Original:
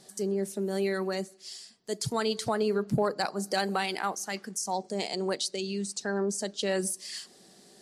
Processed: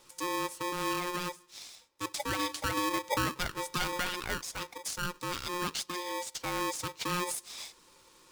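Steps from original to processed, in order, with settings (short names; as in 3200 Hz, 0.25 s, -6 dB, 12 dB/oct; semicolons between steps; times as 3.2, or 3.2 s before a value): varispeed -6%; polarity switched at an audio rate 710 Hz; gain -4 dB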